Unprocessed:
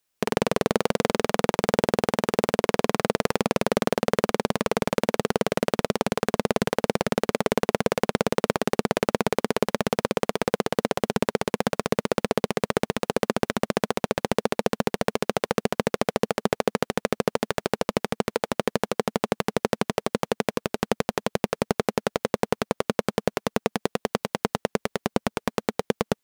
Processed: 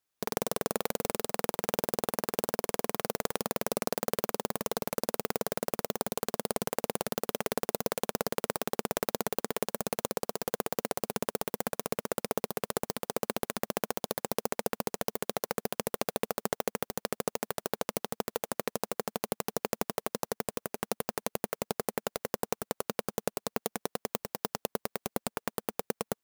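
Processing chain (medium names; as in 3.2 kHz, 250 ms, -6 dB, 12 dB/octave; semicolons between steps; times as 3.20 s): bass shelf 430 Hz -8 dB; sampling jitter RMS 0.097 ms; trim -5.5 dB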